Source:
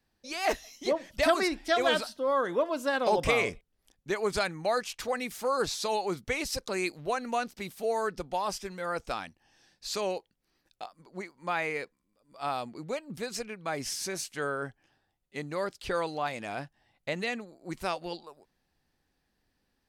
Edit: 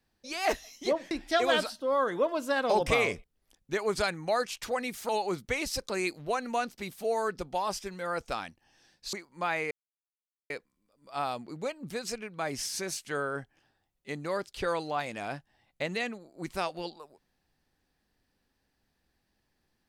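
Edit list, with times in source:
1.11–1.48 cut
5.46–5.88 cut
9.92–11.19 cut
11.77 insert silence 0.79 s

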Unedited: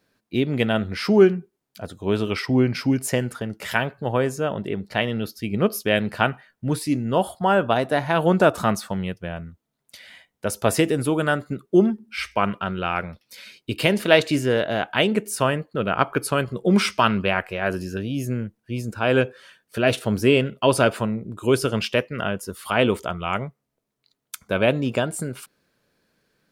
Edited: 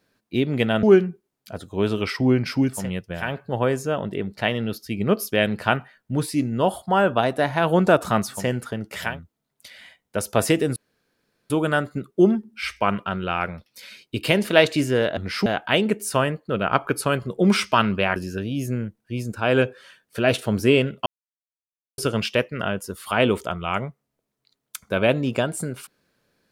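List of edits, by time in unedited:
0.83–1.12 move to 14.72
3.08–3.78 swap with 8.92–9.38, crossfade 0.24 s
11.05 insert room tone 0.74 s
17.42–17.75 cut
20.65–21.57 mute

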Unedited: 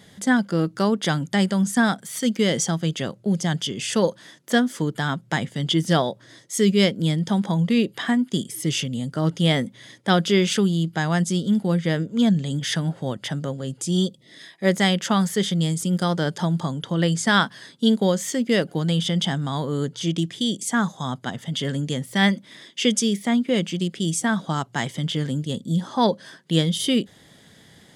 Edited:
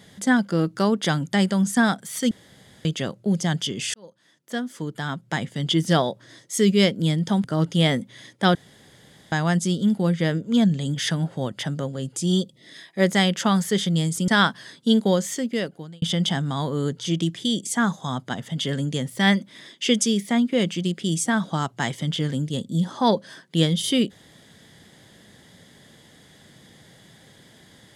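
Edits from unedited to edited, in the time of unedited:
2.31–2.85 room tone
3.94–5.79 fade in
7.44–9.09 cut
10.2–10.97 room tone
15.93–17.24 cut
18.14–18.98 fade out

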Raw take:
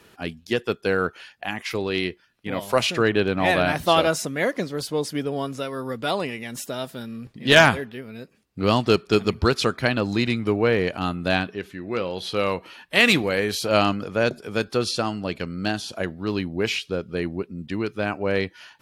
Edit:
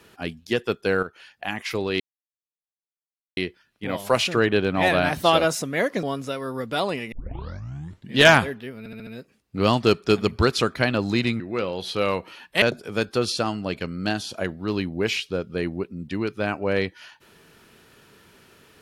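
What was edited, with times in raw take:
1.03–1.46 fade in, from -12 dB
2 insert silence 1.37 s
4.66–5.34 cut
6.43 tape start 1.05 s
8.1 stutter 0.07 s, 5 plays
10.43–11.78 cut
13–14.21 cut

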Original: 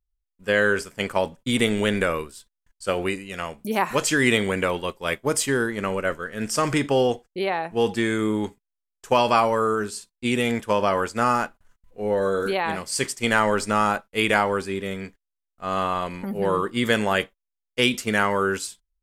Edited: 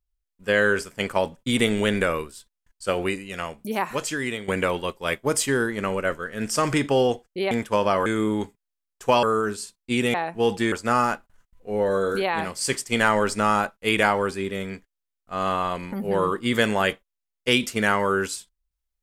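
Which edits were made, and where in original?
3.39–4.48 fade out, to -14 dB
7.51–8.09 swap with 10.48–11.03
9.26–9.57 cut

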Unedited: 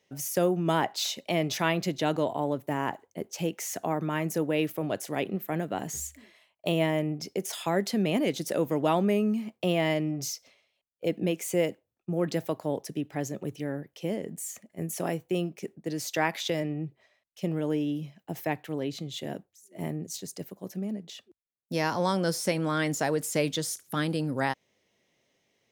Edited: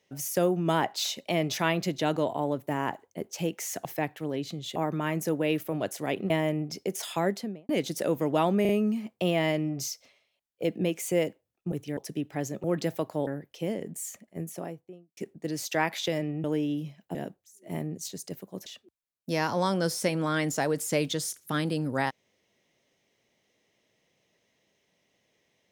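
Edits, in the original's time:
5.39–6.8 cut
7.71–8.19 studio fade out
9.11 stutter 0.04 s, 3 plays
12.14–12.77 swap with 13.44–13.69
14.53–15.59 studio fade out
16.86–17.62 cut
18.33–19.24 move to 3.85
20.75–21.09 cut

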